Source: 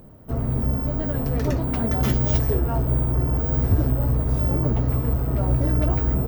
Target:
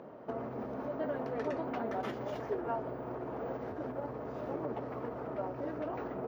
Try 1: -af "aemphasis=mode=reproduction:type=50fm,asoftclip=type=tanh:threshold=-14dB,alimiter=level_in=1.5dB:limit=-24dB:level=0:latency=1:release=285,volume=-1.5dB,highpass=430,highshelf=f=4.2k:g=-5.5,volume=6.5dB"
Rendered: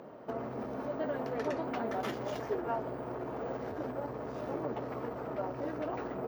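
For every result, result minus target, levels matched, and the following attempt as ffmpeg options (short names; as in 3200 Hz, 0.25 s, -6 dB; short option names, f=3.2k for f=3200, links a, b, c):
soft clip: distortion +12 dB; 4000 Hz band +4.0 dB
-af "aemphasis=mode=reproduction:type=50fm,asoftclip=type=tanh:threshold=-6.5dB,alimiter=level_in=1.5dB:limit=-24dB:level=0:latency=1:release=285,volume=-1.5dB,highpass=430,highshelf=f=4.2k:g=-5.5,volume=6.5dB"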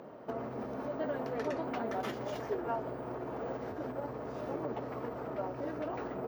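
4000 Hz band +4.0 dB
-af "aemphasis=mode=reproduction:type=50fm,asoftclip=type=tanh:threshold=-6.5dB,alimiter=level_in=1.5dB:limit=-24dB:level=0:latency=1:release=285,volume=-1.5dB,highpass=430,highshelf=f=4.2k:g=-16,volume=6.5dB"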